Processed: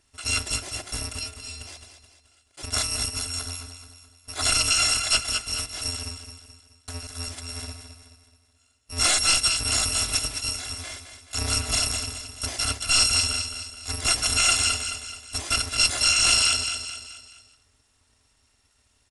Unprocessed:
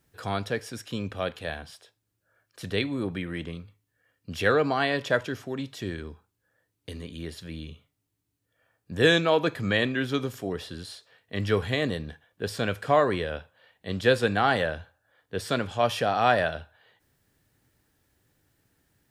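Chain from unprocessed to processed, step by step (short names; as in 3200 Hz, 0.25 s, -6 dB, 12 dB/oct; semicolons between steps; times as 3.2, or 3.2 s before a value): FFT order left unsorted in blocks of 256 samples; 1.19–1.61 metallic resonator 79 Hz, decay 0.49 s, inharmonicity 0.008; feedback echo 0.214 s, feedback 45%, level -9 dB; wavefolder -17.5 dBFS; downsampling 22050 Hz; gain +7 dB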